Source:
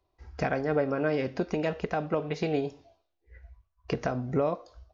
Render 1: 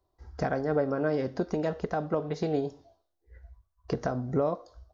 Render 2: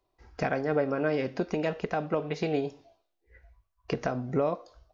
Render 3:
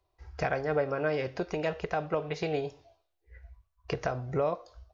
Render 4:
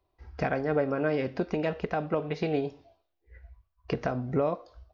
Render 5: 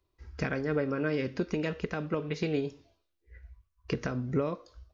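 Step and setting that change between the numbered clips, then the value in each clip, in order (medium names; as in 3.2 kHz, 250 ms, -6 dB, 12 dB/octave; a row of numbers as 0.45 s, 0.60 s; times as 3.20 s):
peaking EQ, frequency: 2.5 kHz, 72 Hz, 240 Hz, 7.6 kHz, 730 Hz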